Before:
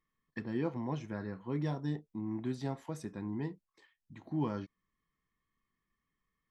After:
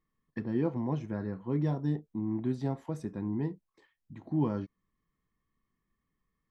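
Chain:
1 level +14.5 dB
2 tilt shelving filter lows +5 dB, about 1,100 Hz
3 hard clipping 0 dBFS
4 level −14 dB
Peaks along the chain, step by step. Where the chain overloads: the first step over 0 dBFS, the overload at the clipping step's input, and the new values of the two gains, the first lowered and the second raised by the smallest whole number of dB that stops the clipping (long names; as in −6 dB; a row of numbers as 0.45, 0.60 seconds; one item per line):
−8.5, −4.5, −4.5, −18.5 dBFS
no step passes full scale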